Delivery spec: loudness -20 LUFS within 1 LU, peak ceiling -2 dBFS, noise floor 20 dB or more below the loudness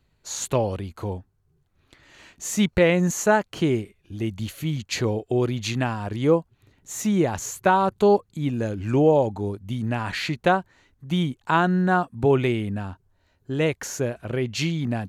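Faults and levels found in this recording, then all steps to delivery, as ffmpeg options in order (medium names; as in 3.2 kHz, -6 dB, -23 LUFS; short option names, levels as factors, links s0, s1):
loudness -24.0 LUFS; peak level -7.0 dBFS; loudness target -20.0 LUFS
-> -af "volume=1.58"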